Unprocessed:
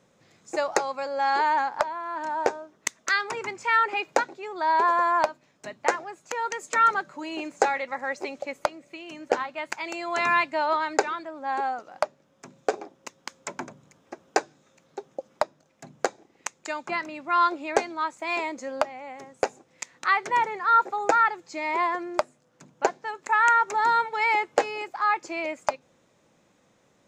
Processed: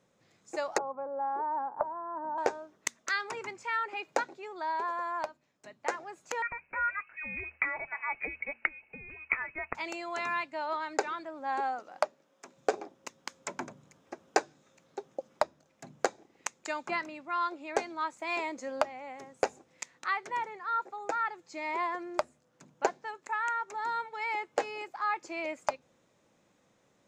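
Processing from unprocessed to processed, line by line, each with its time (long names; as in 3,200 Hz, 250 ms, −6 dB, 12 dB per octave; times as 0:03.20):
0:00.78–0:02.38: low-pass filter 1,100 Hz 24 dB per octave
0:06.42–0:09.75: voice inversion scrambler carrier 2,800 Hz
0:11.62–0:12.56: high-pass filter 110 Hz → 420 Hz
whole clip: hum removal 77.39 Hz, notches 3; speech leveller within 5 dB 0.5 s; level −8 dB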